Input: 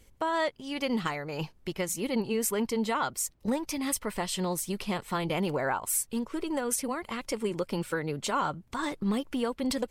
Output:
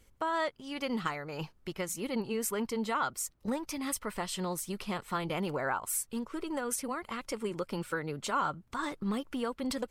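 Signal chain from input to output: bell 1300 Hz +5.5 dB 0.56 oct; gain -4.5 dB

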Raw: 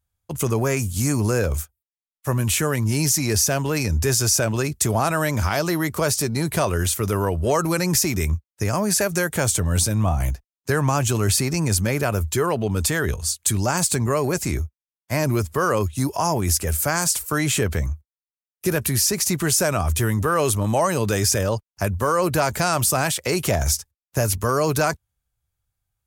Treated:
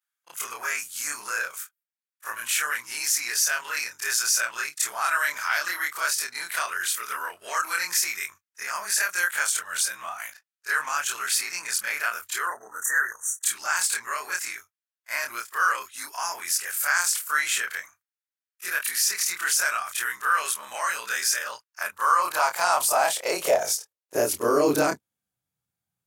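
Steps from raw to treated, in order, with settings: short-time reversal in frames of 68 ms; spectral delete 12.47–13.43, 2000–5700 Hz; high-pass sweep 1500 Hz -> 180 Hz, 21.67–25.61

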